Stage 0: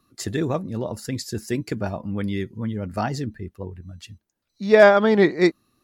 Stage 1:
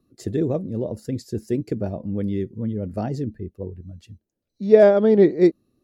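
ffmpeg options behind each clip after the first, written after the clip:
-af "lowshelf=f=730:t=q:w=1.5:g=11,volume=-10.5dB"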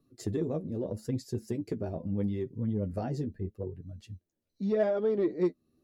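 -af "acompressor=threshold=-27dB:ratio=2,flanger=delay=6.8:depth=6.4:regen=26:speed=0.79:shape=triangular,asoftclip=type=tanh:threshold=-17dB"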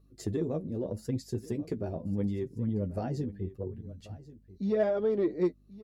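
-af "aecho=1:1:1086:0.126,aeval=exprs='val(0)+0.000891*(sin(2*PI*50*n/s)+sin(2*PI*2*50*n/s)/2+sin(2*PI*3*50*n/s)/3+sin(2*PI*4*50*n/s)/4+sin(2*PI*5*50*n/s)/5)':c=same"

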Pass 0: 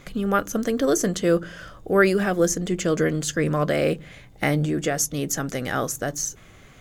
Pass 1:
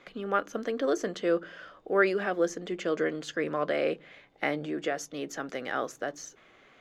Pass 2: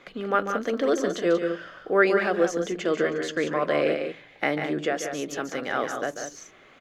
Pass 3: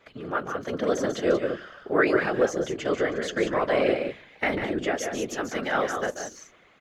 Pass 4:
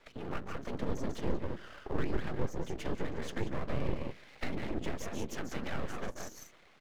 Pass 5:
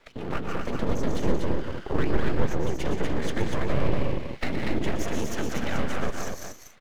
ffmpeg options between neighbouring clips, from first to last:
-filter_complex "[0:a]acrossover=split=260 4500:gain=0.0891 1 0.0891[a][b][c];[a][b][c]amix=inputs=3:normalize=0,volume=-5dB"
-af "aecho=1:1:142.9|183.7:0.355|0.398,volume=4dB"
-af "dynaudnorm=f=240:g=7:m=8dB,afftfilt=real='hypot(re,im)*cos(2*PI*random(0))':imag='hypot(re,im)*sin(2*PI*random(1))':win_size=512:overlap=0.75"
-filter_complex "[0:a]aeval=exprs='max(val(0),0)':c=same,acrossover=split=270[a][b];[b]acompressor=threshold=-40dB:ratio=6[c];[a][c]amix=inputs=2:normalize=0"
-filter_complex "[0:a]asplit=2[a][b];[b]aeval=exprs='sgn(val(0))*max(abs(val(0))-0.00398,0)':c=same,volume=-3dB[c];[a][c]amix=inputs=2:normalize=0,aecho=1:1:120|241:0.316|0.631,volume=3.5dB"

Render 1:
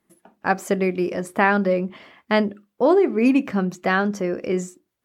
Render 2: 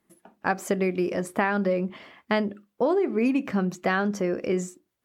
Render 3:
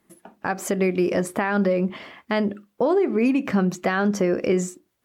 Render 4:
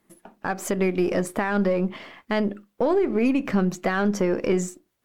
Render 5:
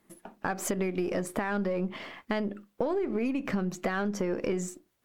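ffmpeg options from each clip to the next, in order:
-af "acompressor=threshold=-19dB:ratio=5,volume=-1dB"
-af "alimiter=limit=-19dB:level=0:latency=1:release=151,volume=6.5dB"
-af "aeval=exprs='if(lt(val(0),0),0.708*val(0),val(0))':c=same"
-af "acompressor=threshold=-27dB:ratio=5"

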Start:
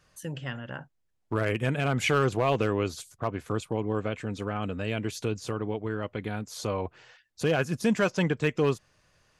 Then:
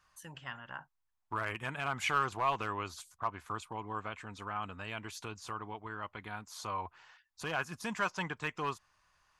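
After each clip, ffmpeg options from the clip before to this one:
-af "equalizer=f=125:t=o:w=1:g=-8,equalizer=f=250:t=o:w=1:g=-6,equalizer=f=500:t=o:w=1:g=-11,equalizer=f=1k:t=o:w=1:g=11,volume=-7dB"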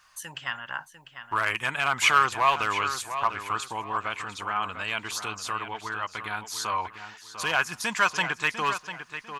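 -filter_complex "[0:a]tiltshelf=f=740:g=-6.5,asplit=2[a][b];[b]adelay=698,lowpass=f=4.5k:p=1,volume=-10dB,asplit=2[c][d];[d]adelay=698,lowpass=f=4.5k:p=1,volume=0.3,asplit=2[e][f];[f]adelay=698,lowpass=f=4.5k:p=1,volume=0.3[g];[a][c][e][g]amix=inputs=4:normalize=0,volume=7.5dB"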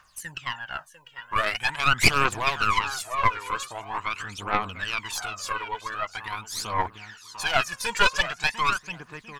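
-af "aphaser=in_gain=1:out_gain=1:delay=2.2:decay=0.74:speed=0.44:type=triangular,aeval=exprs='0.841*(cos(1*acos(clip(val(0)/0.841,-1,1)))-cos(1*PI/2))+0.422*(cos(4*acos(clip(val(0)/0.841,-1,1)))-cos(4*PI/2))+0.0841*(cos(5*acos(clip(val(0)/0.841,-1,1)))-cos(5*PI/2))':c=same,volume=-6dB"

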